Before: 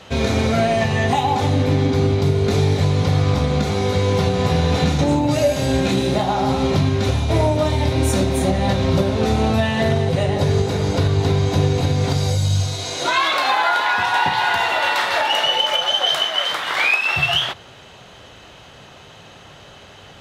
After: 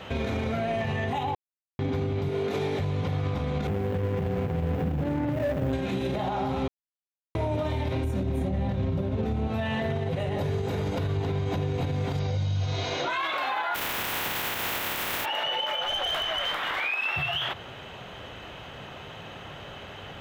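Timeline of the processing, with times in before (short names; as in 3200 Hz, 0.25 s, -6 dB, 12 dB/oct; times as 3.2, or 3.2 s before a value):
1.35–1.79 mute
2.29–2.79 HPF 230 Hz
3.67–5.73 median filter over 41 samples
6.68–7.35 mute
8.04–9.48 low shelf 380 Hz +11 dB
10.19–11.16 high shelf 8800 Hz +7.5 dB
12.19–13.1 steep low-pass 6400 Hz 48 dB/oct
13.74–15.24 spectral contrast lowered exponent 0.16
15.85–16.8 tube stage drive 15 dB, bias 0.4
whole clip: band shelf 6700 Hz -10 dB; compressor, threshold -23 dBFS; limiter -22 dBFS; gain +1.5 dB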